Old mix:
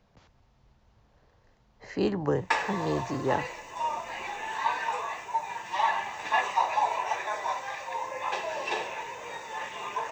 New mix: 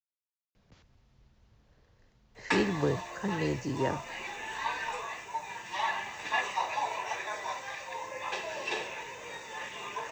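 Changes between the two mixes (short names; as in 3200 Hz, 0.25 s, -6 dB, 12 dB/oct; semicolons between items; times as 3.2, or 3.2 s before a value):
speech: entry +0.55 s; master: add bell 840 Hz -7 dB 1.4 oct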